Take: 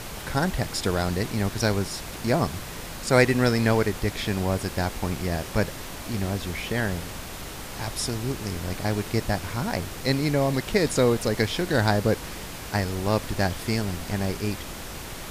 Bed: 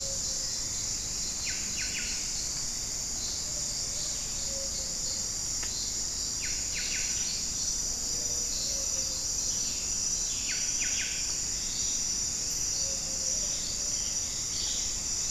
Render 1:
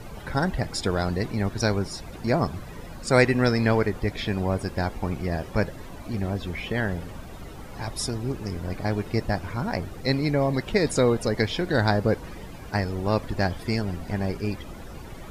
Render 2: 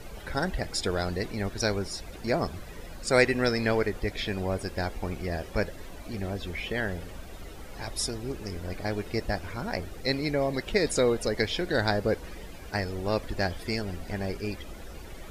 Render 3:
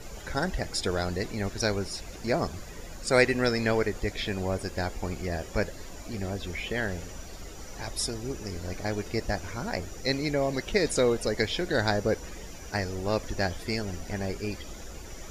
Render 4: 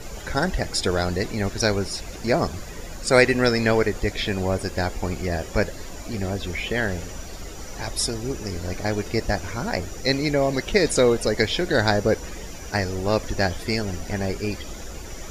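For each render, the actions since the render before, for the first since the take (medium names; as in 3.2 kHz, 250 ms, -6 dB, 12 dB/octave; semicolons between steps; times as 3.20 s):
noise reduction 14 dB, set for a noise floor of -37 dBFS
graphic EQ 125/250/1000 Hz -9/-4/-6 dB
add bed -20 dB
trim +6 dB; peak limiter -2 dBFS, peak gain reduction 1.5 dB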